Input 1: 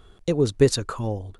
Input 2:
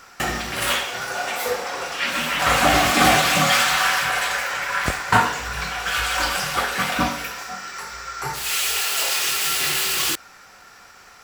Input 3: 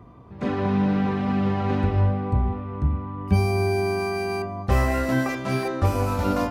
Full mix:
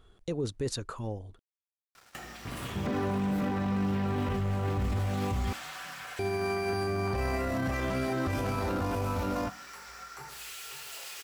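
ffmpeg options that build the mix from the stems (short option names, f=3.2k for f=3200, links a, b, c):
-filter_complex "[0:a]volume=-15.5dB[a];[1:a]acompressor=threshold=-33dB:ratio=3,acrusher=bits=6:mix=0:aa=0.5,adelay=1950,volume=-18dB,asplit=2[b][c];[c]volume=-9dB[d];[2:a]acompressor=threshold=-30dB:ratio=6,adelay=2450,volume=1dB,asplit=3[e][f][g];[e]atrim=end=4.99,asetpts=PTS-STARTPTS,afade=t=out:st=4.986:d=0.004:c=hsin[h];[f]atrim=start=4.99:end=6.19,asetpts=PTS-STARTPTS,volume=0[i];[g]atrim=start=6.19,asetpts=PTS-STARTPTS,afade=t=in:d=0.004:c=hsin[j];[h][i][j]concat=n=3:v=0:a=1,asplit=2[k][l];[l]volume=-3dB[m];[d][m]amix=inputs=2:normalize=0,aecho=0:1:540:1[n];[a][b][k][n]amix=inputs=4:normalize=0,acontrast=78,alimiter=limit=-23.5dB:level=0:latency=1:release=11"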